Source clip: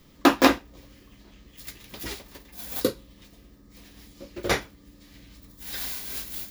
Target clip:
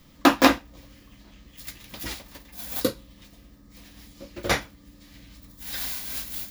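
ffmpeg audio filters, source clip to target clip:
-af "equalizer=f=400:t=o:w=0.2:g=-14,volume=1.5dB"

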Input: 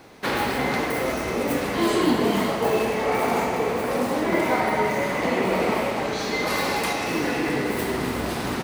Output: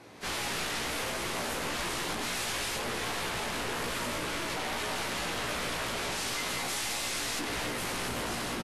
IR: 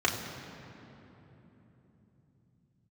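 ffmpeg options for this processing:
-filter_complex "[0:a]asettb=1/sr,asplit=3[a][b][c];[a]atrim=end=6.684[d];[b]atrim=start=6.68:end=7.39,asetpts=PTS-STARTPTS,afade=t=in:d=0.004:c=qsin,afade=t=out:st=0.706:d=0.004:c=qsin,equalizer=f=3.5k:t=o:w=2.7:g=13[e];[c]atrim=start=7.386[f];[d][e]acrossfade=d=0.004:c1=hsin:c2=qsin[g];[g][f]acrossfade=d=0.004:c1=qsin:c2=hsin,dynaudnorm=f=130:g=5:m=11dB,alimiter=limit=-9.5dB:level=0:latency=1:release=404,asettb=1/sr,asplit=3[h][i][j];[h]atrim=end=2.234[k];[i]atrim=start=2.23:end=2.76,asetpts=PTS-STARTPTS,afade=t=in:d=0.004:c=qsin,afade=t=out:st=0.526:d=0.004:c=qsin,acontrast=45[l];[j]atrim=start=2.756[m];[k][l]acrossfade=d=0.004:c1=hsin:c2=qsin[n];[n][m]acrossfade=d=0.004:c1=qsin:c2=hsin,aeval=exprs='(mod(6.31*val(0)+1,2)-1)/6.31':c=same,aeval=exprs='(tanh(28.2*val(0)+0.15)-tanh(0.15))/28.2':c=same,asettb=1/sr,asplit=3[o][p][q];[o]atrim=end=3.834[r];[p]atrim=start=3.83:end=4.56,asetpts=PTS-STARTPTS,afade=t=in:d=0.004:c=qsin,afade=t=out:st=0.726:d=0.004:c=qsin,asuperstop=centerf=760:order=4:qfactor=8[s];[q]atrim=start=4.556[t];[r][s]acrossfade=d=0.004:c1=hsin:c2=qsin[u];[u][t]acrossfade=d=0.004:c1=qsin:c2=hsin,aecho=1:1:17|75:0.596|0.224,volume=-5dB" -ar 32000 -c:a libvorbis -b:a 32k

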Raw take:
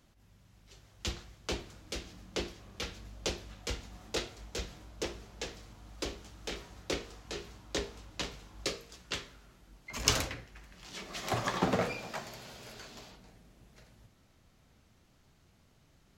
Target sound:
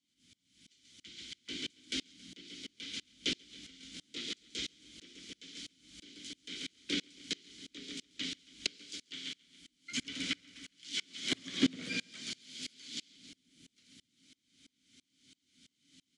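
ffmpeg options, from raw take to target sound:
-filter_complex "[0:a]acrossover=split=2900[a][b];[b]acompressor=threshold=-47dB:ratio=4:attack=1:release=60[c];[a][c]amix=inputs=2:normalize=0,aemphasis=mode=production:type=75kf,aexciter=amount=5.9:drive=3.1:freq=3.3k,asplit=3[d][e][f];[d]bandpass=f=270:t=q:w=8,volume=0dB[g];[e]bandpass=f=2.29k:t=q:w=8,volume=-6dB[h];[f]bandpass=f=3.01k:t=q:w=8,volume=-9dB[i];[g][h][i]amix=inputs=3:normalize=0,asplit=2[j][k];[k]asetrate=29433,aresample=44100,atempo=1.49831,volume=-11dB[l];[j][l]amix=inputs=2:normalize=0,asplit=2[m][n];[n]aecho=0:1:137|274|411|548:0.299|0.125|0.0527|0.0221[o];[m][o]amix=inputs=2:normalize=0,aresample=22050,aresample=44100,aeval=exprs='val(0)*pow(10,-30*if(lt(mod(-3*n/s,1),2*abs(-3)/1000),1-mod(-3*n/s,1)/(2*abs(-3)/1000),(mod(-3*n/s,1)-2*abs(-3)/1000)/(1-2*abs(-3)/1000))/20)':c=same,volume=14.5dB"

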